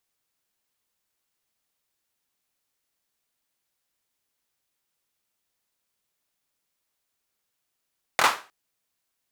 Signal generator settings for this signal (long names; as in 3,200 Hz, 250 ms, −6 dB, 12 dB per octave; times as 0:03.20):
synth clap length 0.31 s, bursts 3, apart 24 ms, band 1,100 Hz, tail 0.33 s